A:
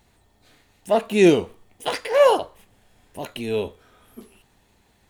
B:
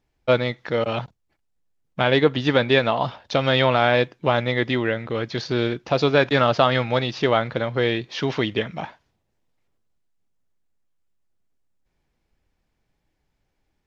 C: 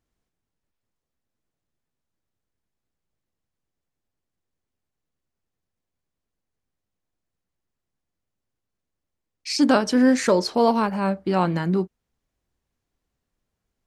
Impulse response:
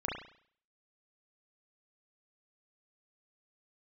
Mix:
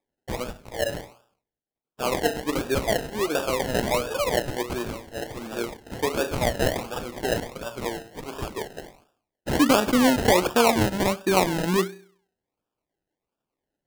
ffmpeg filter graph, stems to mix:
-filter_complex "[0:a]acompressor=threshold=-30dB:ratio=1.5,asplit=2[link_01][link_02];[link_02]adelay=10,afreqshift=-1.7[link_03];[link_01][link_03]amix=inputs=2:normalize=1,adelay=2000,volume=-1dB[link_04];[1:a]highpass=frequency=370:poles=1,acrossover=split=1400[link_05][link_06];[link_05]aeval=exprs='val(0)*(1-1/2+1/2*cos(2*PI*4.8*n/s))':channel_layout=same[link_07];[link_06]aeval=exprs='val(0)*(1-1/2-1/2*cos(2*PI*4.8*n/s))':channel_layout=same[link_08];[link_07][link_08]amix=inputs=2:normalize=0,volume=-3dB,asplit=2[link_09][link_10];[link_10]volume=-8.5dB[link_11];[2:a]agate=range=-33dB:threshold=-35dB:ratio=3:detection=peak,acompressor=threshold=-19dB:ratio=2,volume=2.5dB,asplit=2[link_12][link_13];[link_13]volume=-16.5dB[link_14];[3:a]atrim=start_sample=2205[link_15];[link_11][link_14]amix=inputs=2:normalize=0[link_16];[link_16][link_15]afir=irnorm=-1:irlink=0[link_17];[link_04][link_09][link_12][link_17]amix=inputs=4:normalize=0,highpass=240,acrusher=samples=30:mix=1:aa=0.000001:lfo=1:lforange=18:lforate=1.4"

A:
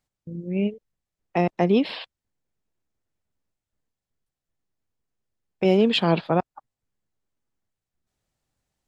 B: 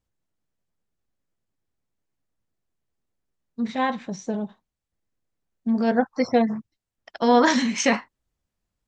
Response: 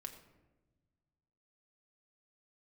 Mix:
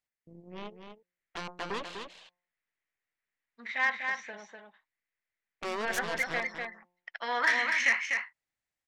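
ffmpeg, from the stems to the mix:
-filter_complex "[0:a]bandreject=frequency=177.5:width_type=h:width=4,bandreject=frequency=355:width_type=h:width=4,bandreject=frequency=532.5:width_type=h:width=4,bandreject=frequency=710:width_type=h:width=4,bandreject=frequency=887.5:width_type=h:width=4,bandreject=frequency=1065:width_type=h:width=4,aeval=exprs='0.422*(cos(1*acos(clip(val(0)/0.422,-1,1)))-cos(1*PI/2))+0.133*(cos(6*acos(clip(val(0)/0.422,-1,1)))-cos(6*PI/2))+0.119*(cos(7*acos(clip(val(0)/0.422,-1,1)))-cos(7*PI/2))':channel_layout=same,asoftclip=type=tanh:threshold=-13.5dB,volume=-11.5dB,asplit=2[link_01][link_02];[link_02]volume=-7dB[link_03];[1:a]dynaudnorm=framelen=200:gausssize=11:maxgain=7.5dB,bandpass=frequency=2000:width_type=q:width=3.8:csg=0,asoftclip=type=tanh:threshold=-18.5dB,volume=1.5dB,asplit=2[link_04][link_05];[link_05]volume=-5dB[link_06];[link_03][link_06]amix=inputs=2:normalize=0,aecho=0:1:247:1[link_07];[link_01][link_04][link_07]amix=inputs=3:normalize=0,lowshelf=frequency=300:gain=-10"

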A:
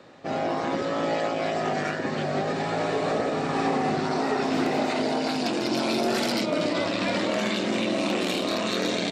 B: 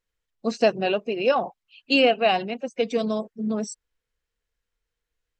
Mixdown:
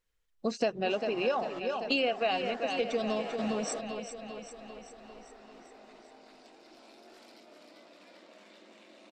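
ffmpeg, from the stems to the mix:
ffmpeg -i stem1.wav -i stem2.wav -filter_complex "[0:a]highpass=frequency=220:width=0.5412,highpass=frequency=220:width=1.3066,adelay=600,volume=-12dB,asplit=2[link_01][link_02];[link_02]volume=-18dB[link_03];[1:a]volume=0.5dB,asplit=3[link_04][link_05][link_06];[link_05]volume=-11dB[link_07];[link_06]apad=whole_len=428260[link_08];[link_01][link_08]sidechaingate=range=-33dB:threshold=-42dB:ratio=16:detection=peak[link_09];[link_03][link_07]amix=inputs=2:normalize=0,aecho=0:1:395|790|1185|1580|1975|2370|2765|3160|3555:1|0.59|0.348|0.205|0.121|0.0715|0.0422|0.0249|0.0147[link_10];[link_09][link_04][link_10]amix=inputs=3:normalize=0,asubboost=boost=9:cutoff=67,acompressor=threshold=-29dB:ratio=3" out.wav

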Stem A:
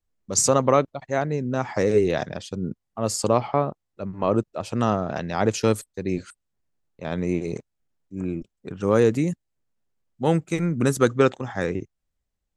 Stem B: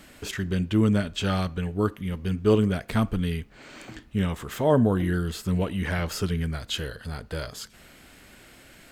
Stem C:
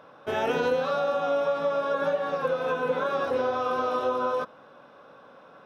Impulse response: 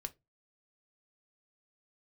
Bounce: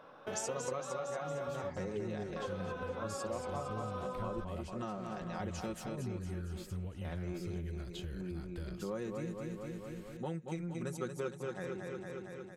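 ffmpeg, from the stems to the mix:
-filter_complex "[0:a]aecho=1:1:5.5:0.65,volume=-10dB,asplit=2[link_01][link_02];[link_02]volume=-5.5dB[link_03];[1:a]asubboost=boost=4:cutoff=99,acrossover=split=320[link_04][link_05];[link_05]acompressor=threshold=-35dB:ratio=6[link_06];[link_04][link_06]amix=inputs=2:normalize=0,adelay=1250,volume=-9.5dB[link_07];[2:a]volume=-4.5dB,asplit=3[link_08][link_09][link_10];[link_08]atrim=end=1.7,asetpts=PTS-STARTPTS,afade=type=out:start_time=1.696:duration=0.004:curve=hsin[link_11];[link_09]atrim=start=1.7:end=2.36,asetpts=PTS-STARTPTS,volume=0[link_12];[link_10]atrim=start=2.36,asetpts=PTS-STARTPTS,afade=type=in:duration=0.004:curve=hsin[link_13];[link_11][link_12][link_13]concat=n=3:v=0:a=1[link_14];[link_03]aecho=0:1:229|458|687|916|1145|1374|1603|1832|2061:1|0.58|0.336|0.195|0.113|0.0656|0.0381|0.0221|0.0128[link_15];[link_01][link_07][link_14][link_15]amix=inputs=4:normalize=0,acompressor=threshold=-40dB:ratio=3"

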